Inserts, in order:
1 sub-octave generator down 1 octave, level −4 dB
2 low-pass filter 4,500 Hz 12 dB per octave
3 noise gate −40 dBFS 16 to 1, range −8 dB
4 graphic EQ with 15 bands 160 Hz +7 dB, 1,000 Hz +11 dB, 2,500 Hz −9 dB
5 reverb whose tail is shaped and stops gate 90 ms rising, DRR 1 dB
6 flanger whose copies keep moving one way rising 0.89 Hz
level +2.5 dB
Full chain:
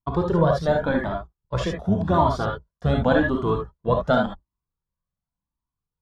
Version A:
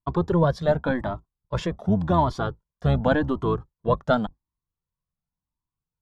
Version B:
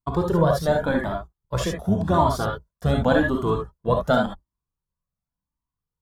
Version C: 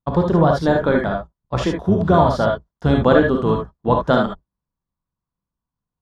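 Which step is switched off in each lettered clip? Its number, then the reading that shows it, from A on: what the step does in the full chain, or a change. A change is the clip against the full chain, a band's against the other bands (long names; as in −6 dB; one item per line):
5, 125 Hz band +2.0 dB
2, 4 kHz band +1.5 dB
6, change in integrated loudness +5.0 LU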